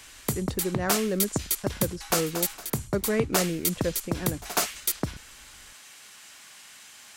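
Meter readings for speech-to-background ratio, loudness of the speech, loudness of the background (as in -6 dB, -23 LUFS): -3.0 dB, -31.5 LUFS, -28.5 LUFS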